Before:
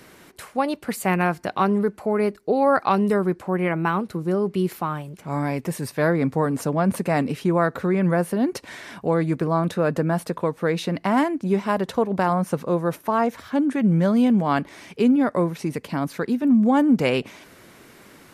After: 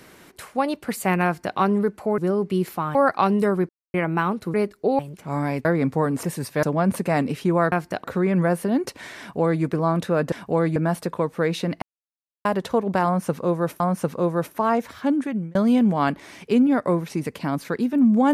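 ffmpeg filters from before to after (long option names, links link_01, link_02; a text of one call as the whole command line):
ffmpeg -i in.wav -filter_complex "[0:a]asplit=18[link_01][link_02][link_03][link_04][link_05][link_06][link_07][link_08][link_09][link_10][link_11][link_12][link_13][link_14][link_15][link_16][link_17][link_18];[link_01]atrim=end=2.182[link_19];[link_02]atrim=start=4.218:end=4.992[link_20];[link_03]atrim=start=2.628:end=3.37,asetpts=PTS-STARTPTS,afade=type=out:start_time=0.738:duration=0.004:curve=hsin[link_21];[link_04]atrim=start=3.37:end=3.62,asetpts=PTS-STARTPTS,volume=0[link_22];[link_05]atrim=start=3.62:end=4.222,asetpts=PTS-STARTPTS,afade=type=in:duration=0.004:curve=hsin[link_23];[link_06]atrim=start=2.178:end=2.632[link_24];[link_07]atrim=start=4.988:end=5.652[link_25];[link_08]atrim=start=6.048:end=6.632[link_26];[link_09]atrim=start=5.648:end=6.052[link_27];[link_10]atrim=start=6.628:end=7.722[link_28];[link_11]atrim=start=1.248:end=1.572[link_29];[link_12]atrim=start=7.718:end=10.002[link_30];[link_13]atrim=start=8.868:end=9.312[link_31];[link_14]atrim=start=9.998:end=11.06,asetpts=PTS-STARTPTS,afade=type=out:start_time=1.058:duration=0.004:curve=hsin[link_32];[link_15]atrim=start=11.06:end=11.69,asetpts=PTS-STARTPTS,volume=0[link_33];[link_16]atrim=start=11.69:end=13.042,asetpts=PTS-STARTPTS,afade=type=in:duration=0.004:curve=hsin[link_34];[link_17]atrim=start=12.288:end=14.04,asetpts=PTS-STARTPTS,afade=type=out:start_time=1.332:duration=0.42[link_35];[link_18]atrim=start=14.04,asetpts=PTS-STARTPTS,afade=type=in:duration=0.004:curve=hsin[link_36];[link_19][link_20]acrossfade=duration=0.004:curve1=hsin:curve2=hsin[link_37];[link_21][link_22][link_23]concat=n=3:v=0:a=1[link_38];[link_37][link_38]acrossfade=duration=0.004:curve1=hsin:curve2=hsin[link_39];[link_39][link_24]acrossfade=duration=0.004:curve1=hsin:curve2=hsin[link_40];[link_40][link_25]acrossfade=duration=0.004:curve1=hsin:curve2=hsin[link_41];[link_41][link_26]acrossfade=duration=0.004:curve1=hsin:curve2=hsin[link_42];[link_42][link_27]acrossfade=duration=0.004:curve1=hsin:curve2=hsin[link_43];[link_43][link_28]acrossfade=duration=0.004:curve1=hsin:curve2=hsin[link_44];[link_44][link_29]acrossfade=duration=0.004:curve1=hsin:curve2=hsin[link_45];[link_45][link_30]acrossfade=duration=0.004:curve1=hsin:curve2=hsin[link_46];[link_46][link_31]acrossfade=duration=0.004:curve1=hsin:curve2=hsin[link_47];[link_32][link_33][link_34]concat=n=3:v=0:a=1[link_48];[link_47][link_48]acrossfade=duration=0.004:curve1=hsin:curve2=hsin[link_49];[link_35][link_36]concat=n=2:v=0:a=1[link_50];[link_49][link_50]acrossfade=duration=0.004:curve1=hsin:curve2=hsin" out.wav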